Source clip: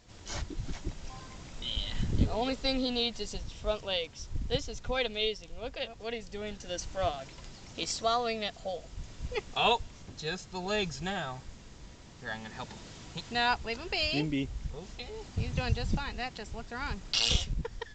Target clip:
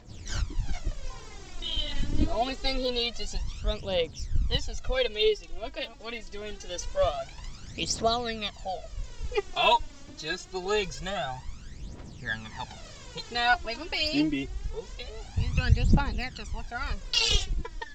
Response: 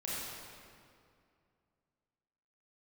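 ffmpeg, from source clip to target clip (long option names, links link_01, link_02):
-af "aphaser=in_gain=1:out_gain=1:delay=3.6:decay=0.7:speed=0.25:type=triangular"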